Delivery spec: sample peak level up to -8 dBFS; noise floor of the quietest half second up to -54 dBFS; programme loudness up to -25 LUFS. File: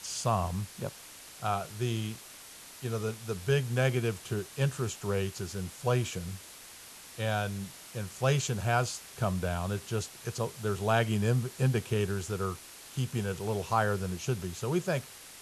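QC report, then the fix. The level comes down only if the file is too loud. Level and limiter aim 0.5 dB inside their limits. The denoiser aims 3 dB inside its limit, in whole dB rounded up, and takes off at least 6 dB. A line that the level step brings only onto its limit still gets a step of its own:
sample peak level -13.5 dBFS: OK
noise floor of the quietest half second -49 dBFS: fail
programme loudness -32.0 LUFS: OK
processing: denoiser 8 dB, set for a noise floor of -49 dBFS

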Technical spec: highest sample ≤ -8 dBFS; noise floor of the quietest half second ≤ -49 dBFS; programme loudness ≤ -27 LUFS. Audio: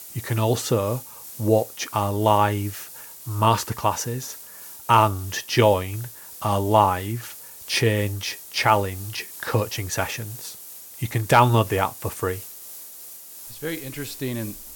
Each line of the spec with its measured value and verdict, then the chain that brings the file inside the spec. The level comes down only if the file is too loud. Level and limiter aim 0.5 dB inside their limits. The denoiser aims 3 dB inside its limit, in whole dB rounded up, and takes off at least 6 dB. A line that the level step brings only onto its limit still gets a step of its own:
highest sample -3.5 dBFS: fail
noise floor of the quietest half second -41 dBFS: fail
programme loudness -23.0 LUFS: fail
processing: denoiser 7 dB, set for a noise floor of -41 dBFS; gain -4.5 dB; limiter -8.5 dBFS

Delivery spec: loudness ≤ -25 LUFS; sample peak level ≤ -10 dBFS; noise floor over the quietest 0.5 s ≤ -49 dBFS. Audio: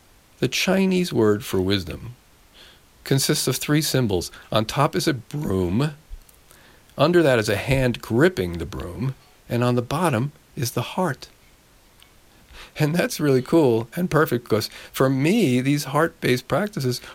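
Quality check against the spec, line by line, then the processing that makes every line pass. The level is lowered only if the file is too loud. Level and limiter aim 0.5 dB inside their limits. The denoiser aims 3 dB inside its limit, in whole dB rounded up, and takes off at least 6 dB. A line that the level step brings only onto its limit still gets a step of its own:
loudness -22.0 LUFS: fail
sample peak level -6.0 dBFS: fail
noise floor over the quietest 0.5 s -54 dBFS: OK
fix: gain -3.5 dB; limiter -10.5 dBFS

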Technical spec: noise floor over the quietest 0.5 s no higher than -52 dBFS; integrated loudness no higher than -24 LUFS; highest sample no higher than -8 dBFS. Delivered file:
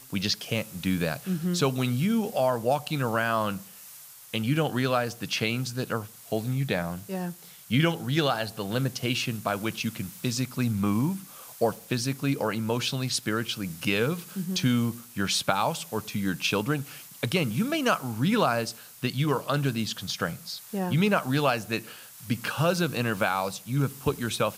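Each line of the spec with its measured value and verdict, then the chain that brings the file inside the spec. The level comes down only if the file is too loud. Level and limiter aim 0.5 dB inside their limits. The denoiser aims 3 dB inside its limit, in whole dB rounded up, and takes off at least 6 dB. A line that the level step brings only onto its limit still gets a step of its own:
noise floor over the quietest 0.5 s -47 dBFS: fail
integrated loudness -28.0 LUFS: OK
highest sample -7.0 dBFS: fail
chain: denoiser 8 dB, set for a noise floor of -47 dBFS; limiter -8.5 dBFS

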